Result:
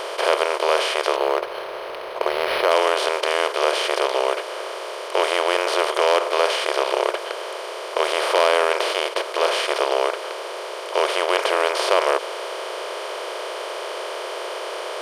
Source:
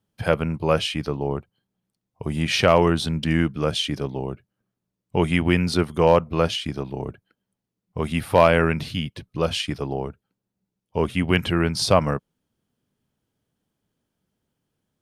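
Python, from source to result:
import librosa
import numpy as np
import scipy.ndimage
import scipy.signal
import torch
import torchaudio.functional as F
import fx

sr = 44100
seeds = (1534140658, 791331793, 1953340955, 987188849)

y = fx.bin_compress(x, sr, power=0.2)
y = fx.brickwall_highpass(y, sr, low_hz=350.0)
y = fx.peak_eq(y, sr, hz=5200.0, db=-3.0, octaves=0.77)
y = fx.resample_linear(y, sr, factor=6, at=(1.16, 2.71))
y = F.gain(torch.from_numpy(y), -6.5).numpy()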